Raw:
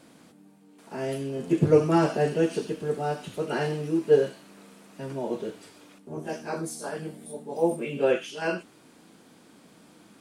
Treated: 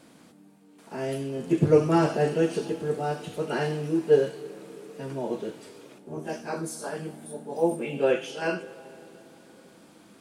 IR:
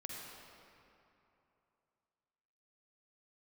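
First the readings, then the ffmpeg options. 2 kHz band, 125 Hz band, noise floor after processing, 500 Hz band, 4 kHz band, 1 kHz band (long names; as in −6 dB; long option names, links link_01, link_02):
0.0 dB, +0.5 dB, −55 dBFS, 0.0 dB, 0.0 dB, 0.0 dB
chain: -filter_complex "[0:a]asplit=2[link_01][link_02];[1:a]atrim=start_sample=2205,asetrate=28665,aresample=44100,adelay=74[link_03];[link_02][link_03]afir=irnorm=-1:irlink=0,volume=-17.5dB[link_04];[link_01][link_04]amix=inputs=2:normalize=0"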